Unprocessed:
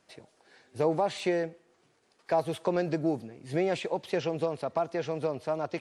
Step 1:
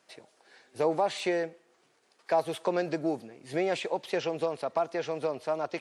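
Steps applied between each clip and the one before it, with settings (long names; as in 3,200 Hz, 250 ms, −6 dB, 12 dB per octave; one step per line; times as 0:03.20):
high-pass filter 390 Hz 6 dB per octave
level +2 dB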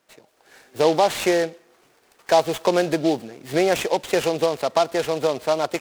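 automatic gain control gain up to 9.5 dB
short delay modulated by noise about 3,500 Hz, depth 0.04 ms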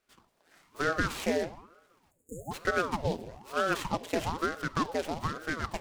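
time-frequency box erased 0:02.11–0:02.51, 410–6,700 Hz
rectangular room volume 3,800 cubic metres, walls furnished, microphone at 0.9 metres
ring modulator whose carrier an LFO sweeps 520 Hz, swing 85%, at 1.1 Hz
level −8.5 dB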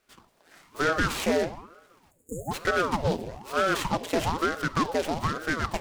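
soft clipping −23.5 dBFS, distortion −13 dB
level +7 dB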